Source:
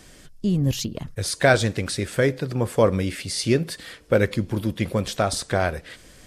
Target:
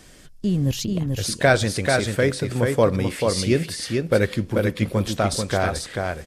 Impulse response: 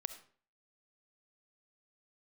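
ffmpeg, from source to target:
-af "aecho=1:1:438:0.631"

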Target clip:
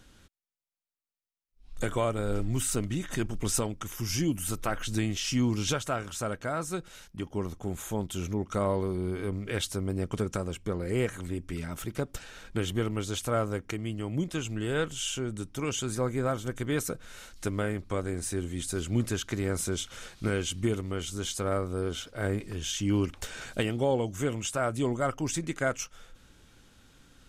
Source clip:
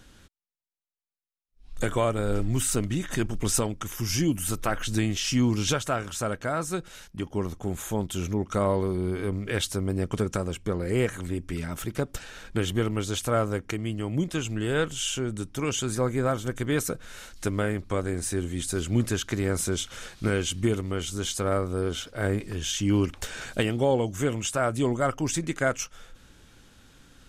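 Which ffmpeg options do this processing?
-af "bandreject=f=1.7k:w=28,volume=-3.5dB"

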